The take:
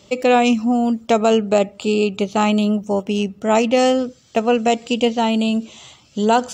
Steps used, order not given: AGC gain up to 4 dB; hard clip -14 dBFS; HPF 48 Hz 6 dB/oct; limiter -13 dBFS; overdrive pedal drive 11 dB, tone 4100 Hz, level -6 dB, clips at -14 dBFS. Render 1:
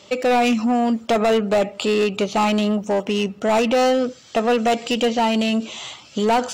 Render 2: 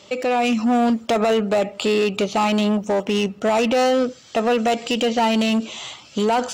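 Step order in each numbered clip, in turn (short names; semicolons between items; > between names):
overdrive pedal > HPF > hard clip > AGC > limiter; limiter > overdrive pedal > AGC > hard clip > HPF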